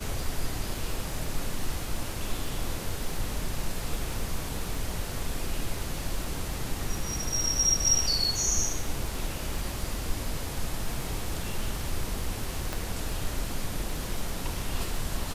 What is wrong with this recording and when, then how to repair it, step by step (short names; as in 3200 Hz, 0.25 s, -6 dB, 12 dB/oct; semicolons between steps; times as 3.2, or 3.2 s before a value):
crackle 35/s -35 dBFS
12.73 pop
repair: de-click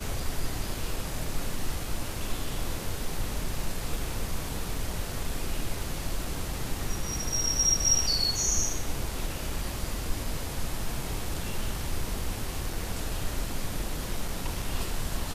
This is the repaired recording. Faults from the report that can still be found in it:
none